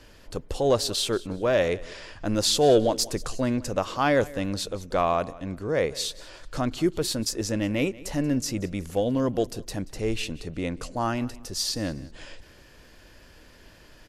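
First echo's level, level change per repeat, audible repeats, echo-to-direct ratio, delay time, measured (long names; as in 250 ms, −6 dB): −20.0 dB, −11.0 dB, 2, −19.5 dB, 183 ms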